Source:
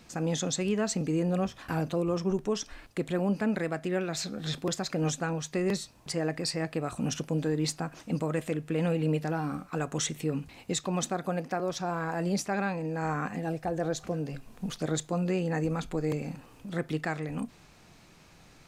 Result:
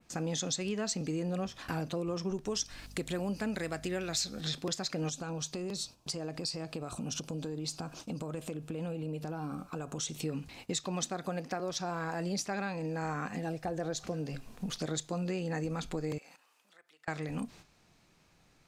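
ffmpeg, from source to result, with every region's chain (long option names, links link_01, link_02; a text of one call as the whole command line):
ffmpeg -i in.wav -filter_complex "[0:a]asettb=1/sr,asplit=3[link_01][link_02][link_03];[link_01]atrim=end=2.464[link_04];[link_02]atrim=start=2.46:end=4.41,asetpts=PTS-STARTPTS,afade=type=in:duration=0.004:curve=qsin,afade=type=out:start_time=1.946:duration=0.004:curve=qsin,aemphasis=mode=production:type=cd,aeval=exprs='val(0)+0.00355*(sin(2*PI*50*n/s)+sin(2*PI*2*50*n/s)/2+sin(2*PI*3*50*n/s)/3+sin(2*PI*4*50*n/s)/4+sin(2*PI*5*50*n/s)/5)':channel_layout=same[link_05];[link_03]atrim=start=4.406[link_06];[link_04][link_05]acrossfade=duration=0.004:curve1=hsin:curve2=qsin[link_07];[link_07][link_06]acrossfade=duration=0.004:curve1=qsin:curve2=hsin,asettb=1/sr,asplit=3[link_08][link_09][link_10];[link_08]atrim=end=5.094[link_11];[link_09]atrim=start=5.09:end=10.24,asetpts=PTS-STARTPTS,afade=type=in:duration=0.004:curve=qsin,afade=type=out:start_time=5.146:duration=0.004:curve=qsin,acompressor=threshold=-33dB:ratio=5:attack=3.2:release=140:knee=1:detection=peak,equalizer=frequency=1900:width=3.4:gain=-11.5[link_12];[link_10]atrim=start=10.236[link_13];[link_11][link_12]acrossfade=duration=0.004:curve1=hsin:curve2=qsin[link_14];[link_14][link_13]acrossfade=duration=0.004:curve1=qsin:curve2=hsin,asettb=1/sr,asplit=3[link_15][link_16][link_17];[link_15]atrim=end=16.184[link_18];[link_16]atrim=start=16.18:end=17.08,asetpts=PTS-STARTPTS,afade=type=in:duration=0.004:curve=qsin,afade=type=out:start_time=0.896:duration=0.004:curve=qsin,highpass=950,acompressor=threshold=-52dB:ratio=4:attack=3.2:release=140:knee=1:detection=peak[link_19];[link_17]atrim=start=17.076[link_20];[link_18][link_19]acrossfade=duration=0.004:curve1=hsin:curve2=qsin[link_21];[link_21][link_20]acrossfade=duration=0.004:curve1=qsin:curve2=hsin,agate=range=-10dB:threshold=-51dB:ratio=16:detection=peak,adynamicequalizer=threshold=0.00316:dfrequency=4900:dqfactor=0.9:tfrequency=4900:tqfactor=0.9:attack=5:release=100:ratio=0.375:range=4:mode=boostabove:tftype=bell,acompressor=threshold=-34dB:ratio=2.5" out.wav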